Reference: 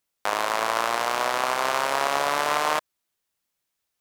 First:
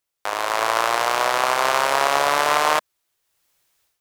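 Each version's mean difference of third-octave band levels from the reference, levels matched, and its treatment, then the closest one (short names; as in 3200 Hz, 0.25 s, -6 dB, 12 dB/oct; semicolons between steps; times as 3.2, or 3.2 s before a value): 1.5 dB: AGC gain up to 14.5 dB; bell 220 Hz -10.5 dB 0.45 oct; gain -1 dB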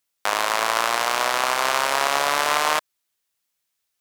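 2.5 dB: tilt shelf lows -3.5 dB, about 1200 Hz; in parallel at -8 dB: bit-crush 7-bit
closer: first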